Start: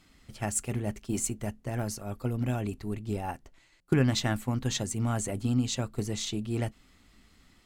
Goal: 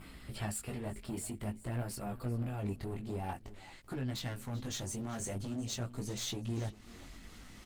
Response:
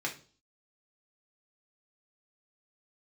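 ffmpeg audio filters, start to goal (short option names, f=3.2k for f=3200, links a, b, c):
-af "acompressor=threshold=-37dB:ratio=8,asoftclip=type=tanh:threshold=-32.5dB,adynamicequalizer=threshold=0.00141:dfrequency=4400:dqfactor=1.9:tfrequency=4400:tqfactor=1.9:attack=5:release=100:ratio=0.375:range=1.5:mode=boostabove:tftype=bell,asoftclip=type=hard:threshold=-38.5dB,acompressor=mode=upward:threshold=-48dB:ratio=2.5,asetnsamples=n=441:p=0,asendcmd='2.6 equalizer g -4.5;4.31 equalizer g 4.5',equalizer=f=6.2k:w=5:g=-14,aecho=1:1:385|770:0.133|0.024,flanger=delay=15.5:depth=6.8:speed=0.49,volume=8dB" -ar 48000 -c:a libopus -b:a 24k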